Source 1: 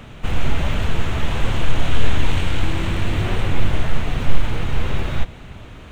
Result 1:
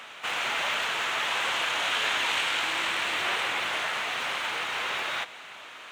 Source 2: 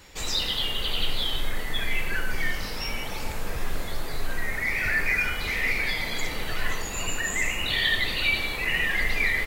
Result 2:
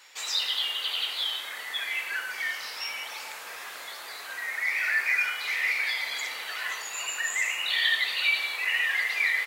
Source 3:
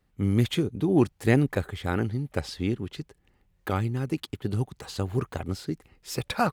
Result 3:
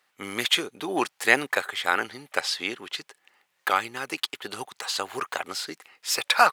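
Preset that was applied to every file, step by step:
HPF 1000 Hz 12 dB/oct; high shelf 11000 Hz -5 dB; match loudness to -27 LUFS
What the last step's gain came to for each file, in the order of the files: +4.0, 0.0, +12.0 dB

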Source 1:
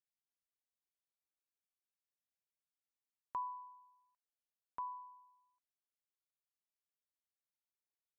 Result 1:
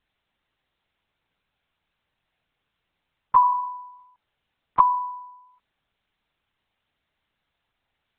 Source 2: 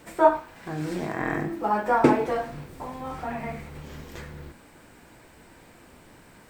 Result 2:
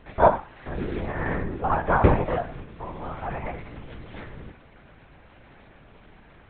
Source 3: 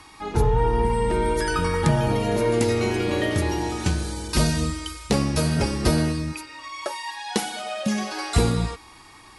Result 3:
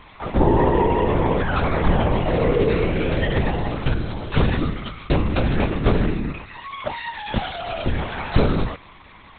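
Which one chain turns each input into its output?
LPC vocoder at 8 kHz whisper; normalise peaks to -3 dBFS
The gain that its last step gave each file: +23.5, +1.0, +3.0 dB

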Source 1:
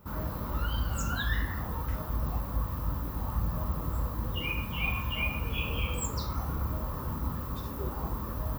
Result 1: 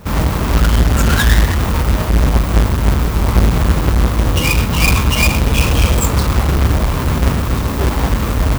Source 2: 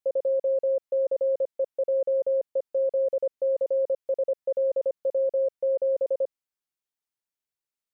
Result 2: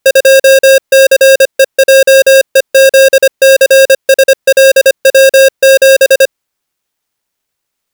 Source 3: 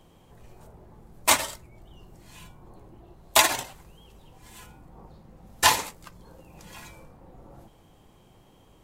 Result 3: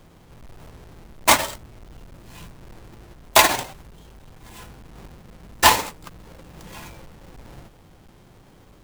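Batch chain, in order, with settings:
half-waves squared off; normalise peaks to -3 dBFS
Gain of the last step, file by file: +14.0, +17.5, +0.5 dB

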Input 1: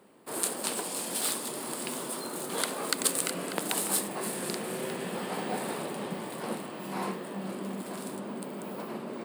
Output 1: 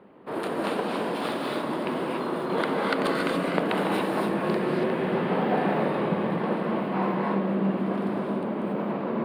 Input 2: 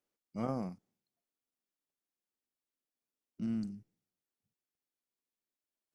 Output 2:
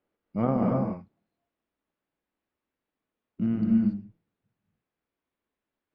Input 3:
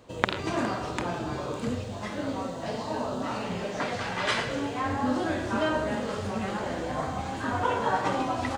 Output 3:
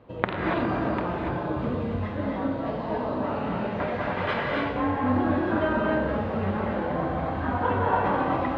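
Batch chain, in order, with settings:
air absorption 480 m; notch 7900 Hz, Q 8.4; non-linear reverb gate 0.31 s rising, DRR -0.5 dB; match loudness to -27 LUFS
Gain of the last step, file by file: +8.0, +11.0, +1.5 dB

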